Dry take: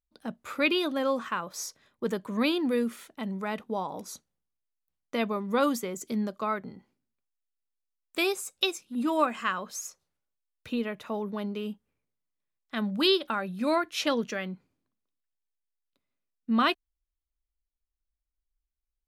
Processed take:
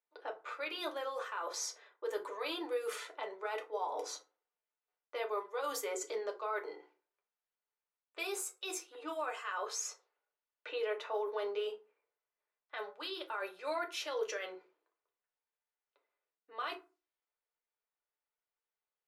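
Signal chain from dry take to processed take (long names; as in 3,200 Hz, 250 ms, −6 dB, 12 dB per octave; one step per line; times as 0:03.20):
elliptic high-pass filter 390 Hz, stop band 40 dB
low-pass that shuts in the quiet parts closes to 2,300 Hz, open at −29 dBFS
reversed playback
downward compressor 16 to 1, threshold −38 dBFS, peak gain reduction 19 dB
reversed playback
brickwall limiter −35.5 dBFS, peak gain reduction 9 dB
feedback delay network reverb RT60 0.31 s, low-frequency decay 1.25×, high-frequency decay 0.6×, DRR 1 dB
level +4 dB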